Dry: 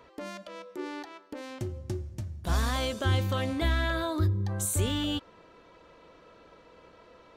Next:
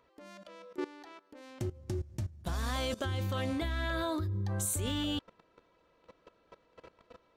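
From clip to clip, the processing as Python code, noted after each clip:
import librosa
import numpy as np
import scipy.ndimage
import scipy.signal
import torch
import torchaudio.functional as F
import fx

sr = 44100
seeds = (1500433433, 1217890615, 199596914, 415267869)

y = fx.level_steps(x, sr, step_db=18)
y = F.gain(torch.from_numpy(y), 3.0).numpy()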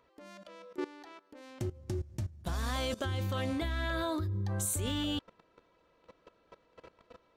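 y = x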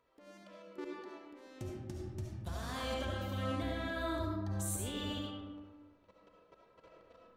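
y = fx.rev_freeverb(x, sr, rt60_s=1.5, hf_ratio=0.45, predelay_ms=30, drr_db=-2.5)
y = F.gain(torch.from_numpy(y), -8.0).numpy()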